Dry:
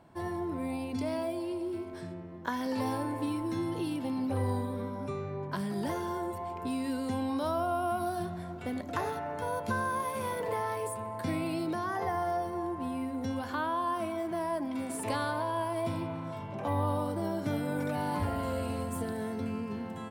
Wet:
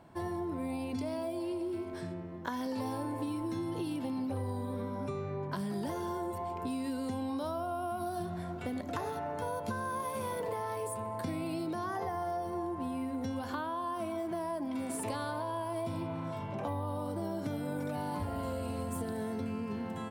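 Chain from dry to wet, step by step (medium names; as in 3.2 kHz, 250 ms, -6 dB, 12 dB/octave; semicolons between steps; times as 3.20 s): dynamic bell 1.9 kHz, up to -4 dB, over -46 dBFS, Q 1.1; compression, threshold -34 dBFS, peak gain reduction 8 dB; trim +1.5 dB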